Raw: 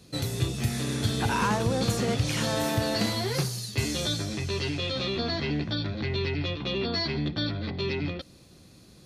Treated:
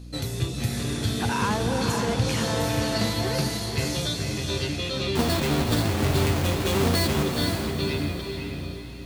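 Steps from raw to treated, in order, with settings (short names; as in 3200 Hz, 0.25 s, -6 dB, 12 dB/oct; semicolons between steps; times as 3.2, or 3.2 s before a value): 5.15–7.23 half-waves squared off; diffused feedback echo 0.482 s, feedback 42%, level -4 dB; hum 60 Hz, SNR 15 dB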